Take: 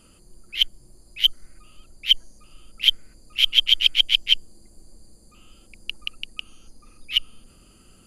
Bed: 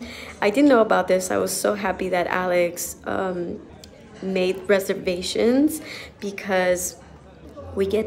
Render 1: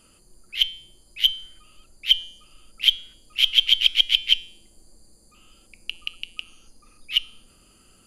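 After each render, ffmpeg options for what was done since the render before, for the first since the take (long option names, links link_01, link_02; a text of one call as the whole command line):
ffmpeg -i in.wav -af "lowshelf=frequency=410:gain=-6,bandreject=frequency=172.4:width_type=h:width=4,bandreject=frequency=344.8:width_type=h:width=4,bandreject=frequency=517.2:width_type=h:width=4,bandreject=frequency=689.6:width_type=h:width=4,bandreject=frequency=862:width_type=h:width=4,bandreject=frequency=1034.4:width_type=h:width=4,bandreject=frequency=1206.8:width_type=h:width=4,bandreject=frequency=1379.2:width_type=h:width=4,bandreject=frequency=1551.6:width_type=h:width=4,bandreject=frequency=1724:width_type=h:width=4,bandreject=frequency=1896.4:width_type=h:width=4,bandreject=frequency=2068.8:width_type=h:width=4,bandreject=frequency=2241.2:width_type=h:width=4,bandreject=frequency=2413.6:width_type=h:width=4,bandreject=frequency=2586:width_type=h:width=4,bandreject=frequency=2758.4:width_type=h:width=4,bandreject=frequency=2930.8:width_type=h:width=4,bandreject=frequency=3103.2:width_type=h:width=4,bandreject=frequency=3275.6:width_type=h:width=4,bandreject=frequency=3448:width_type=h:width=4,bandreject=frequency=3620.4:width_type=h:width=4,bandreject=frequency=3792.8:width_type=h:width=4,bandreject=frequency=3965.2:width_type=h:width=4,bandreject=frequency=4137.6:width_type=h:width=4,bandreject=frequency=4310:width_type=h:width=4,bandreject=frequency=4482.4:width_type=h:width=4,bandreject=frequency=4654.8:width_type=h:width=4,bandreject=frequency=4827.2:width_type=h:width=4,bandreject=frequency=4999.6:width_type=h:width=4,bandreject=frequency=5172:width_type=h:width=4,bandreject=frequency=5344.4:width_type=h:width=4,bandreject=frequency=5516.8:width_type=h:width=4,bandreject=frequency=5689.2:width_type=h:width=4,bandreject=frequency=5861.6:width_type=h:width=4,bandreject=frequency=6034:width_type=h:width=4,bandreject=frequency=6206.4:width_type=h:width=4,bandreject=frequency=6378.8:width_type=h:width=4,bandreject=frequency=6551.2:width_type=h:width=4" out.wav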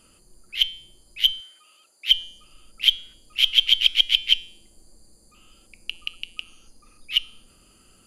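ffmpeg -i in.wav -filter_complex "[0:a]asettb=1/sr,asplit=3[link_01][link_02][link_03];[link_01]atrim=end=1.404[link_04];[link_02]atrim=start=1.4:end=2.11,asetpts=PTS-STARTPTS,afade=type=in:duration=0.004:curve=qsin,afade=type=out:start_time=0.706:duration=0.004:curve=qsin,highpass=570[link_05];[link_03]atrim=start=2.106[link_06];[link_04][link_05]acrossfade=duration=0.004:curve1=hsin:curve2=qsin[link_07];[link_07][link_06]acrossfade=duration=0.004:curve1=qsin:curve2=hsin" out.wav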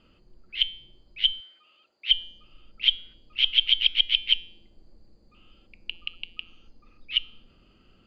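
ffmpeg -i in.wav -af "lowpass=frequency=3600:width=0.5412,lowpass=frequency=3600:width=1.3066,equalizer=frequency=1300:width=0.51:gain=-4.5" out.wav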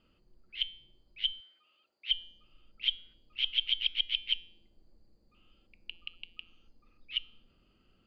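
ffmpeg -i in.wav -af "volume=-9dB" out.wav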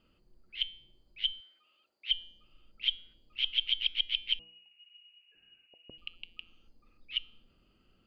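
ffmpeg -i in.wav -filter_complex "[0:a]asettb=1/sr,asplit=3[link_01][link_02][link_03];[link_01]atrim=end=4.394[link_04];[link_02]atrim=start=4.39:end=5.98,asetpts=PTS-STARTPTS,afade=type=in:duration=0.004:curve=qsin,afade=type=out:start_time=1.586:duration=0.004:curve=qsin,lowpass=frequency=2500:width_type=q:width=0.5098,lowpass=frequency=2500:width_type=q:width=0.6013,lowpass=frequency=2500:width_type=q:width=0.9,lowpass=frequency=2500:width_type=q:width=2.563,afreqshift=-2900[link_05];[link_03]atrim=start=5.976[link_06];[link_04][link_05]acrossfade=duration=0.004:curve1=hsin:curve2=qsin[link_07];[link_07][link_06]acrossfade=duration=0.004:curve1=qsin:curve2=hsin" out.wav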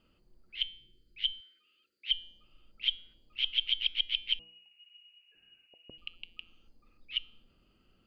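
ffmpeg -i in.wav -filter_complex "[0:a]asettb=1/sr,asplit=3[link_01][link_02][link_03];[link_01]atrim=end=0.664[link_04];[link_02]atrim=start=0.66:end=2.23,asetpts=PTS-STARTPTS,afade=type=in:duration=0.004:curve=qsin,afade=type=out:start_time=1.566:duration=0.004:curve=qsin,asuperstop=centerf=820:order=8:qfactor=0.98[link_05];[link_03]atrim=start=2.226[link_06];[link_04][link_05]acrossfade=duration=0.004:curve1=hsin:curve2=qsin[link_07];[link_07][link_06]acrossfade=duration=0.004:curve1=qsin:curve2=hsin" out.wav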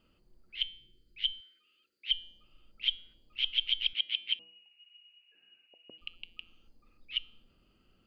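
ffmpeg -i in.wav -filter_complex "[0:a]asettb=1/sr,asplit=3[link_01][link_02][link_03];[link_01]atrim=end=3.934[link_04];[link_02]atrim=start=3.93:end=6.01,asetpts=PTS-STARTPTS,afade=type=in:duration=0.004:curve=qsin,afade=type=out:start_time=2.076:duration=0.004:curve=qsin,highpass=230,lowpass=4200[link_05];[link_03]atrim=start=6.006[link_06];[link_04][link_05]acrossfade=duration=0.004:curve1=hsin:curve2=qsin[link_07];[link_07][link_06]acrossfade=duration=0.004:curve1=qsin:curve2=hsin" out.wav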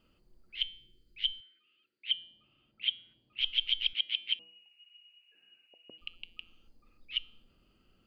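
ffmpeg -i in.wav -filter_complex "[0:a]asettb=1/sr,asplit=3[link_01][link_02][link_03];[link_01]atrim=end=1.404[link_04];[link_02]atrim=start=1.4:end=3.41,asetpts=PTS-STARTPTS,afade=type=in:duration=0.004:curve=qsin,afade=type=out:start_time=2.006:duration=0.004:curve=qsin,highpass=110,equalizer=frequency=120:width_type=q:width=4:gain=6,equalizer=frequency=500:width_type=q:width=4:gain=-6,equalizer=frequency=1300:width_type=q:width=4:gain=-3,lowpass=frequency=3700:width=0.5412,lowpass=frequency=3700:width=1.3066[link_05];[link_03]atrim=start=3.406[link_06];[link_04][link_05]acrossfade=duration=0.004:curve1=hsin:curve2=qsin[link_07];[link_07][link_06]acrossfade=duration=0.004:curve1=qsin:curve2=hsin" out.wav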